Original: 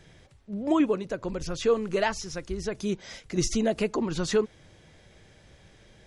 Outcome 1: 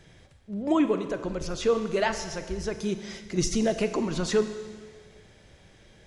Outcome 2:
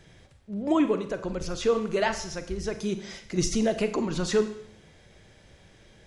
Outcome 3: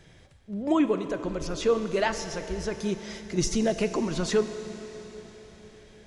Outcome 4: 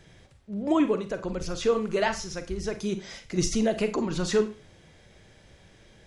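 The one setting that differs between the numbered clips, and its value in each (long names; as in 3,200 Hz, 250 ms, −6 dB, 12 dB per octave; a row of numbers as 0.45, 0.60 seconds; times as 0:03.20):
four-comb reverb, RT60: 1.7, 0.67, 4.4, 0.32 seconds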